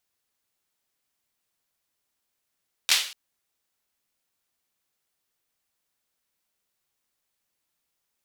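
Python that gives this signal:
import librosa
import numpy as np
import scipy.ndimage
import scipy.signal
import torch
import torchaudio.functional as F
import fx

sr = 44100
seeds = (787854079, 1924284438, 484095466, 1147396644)

y = fx.drum_clap(sr, seeds[0], length_s=0.24, bursts=3, spacing_ms=12, hz=3400.0, decay_s=0.46)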